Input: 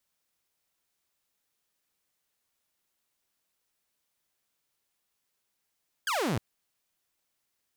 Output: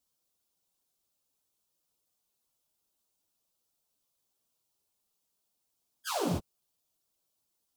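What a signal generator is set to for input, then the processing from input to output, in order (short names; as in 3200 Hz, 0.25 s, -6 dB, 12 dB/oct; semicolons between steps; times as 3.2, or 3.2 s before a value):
laser zap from 1700 Hz, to 95 Hz, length 0.31 s saw, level -24 dB
phase scrambler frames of 50 ms; bell 1900 Hz -13.5 dB 0.97 oct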